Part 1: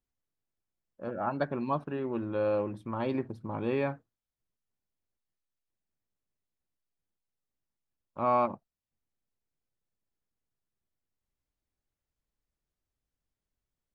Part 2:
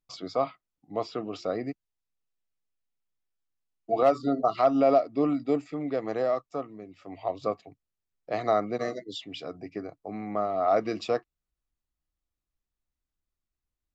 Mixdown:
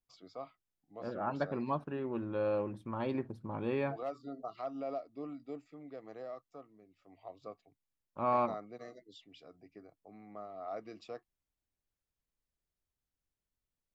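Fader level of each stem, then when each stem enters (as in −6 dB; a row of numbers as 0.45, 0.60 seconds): −4.0, −18.0 decibels; 0.00, 0.00 seconds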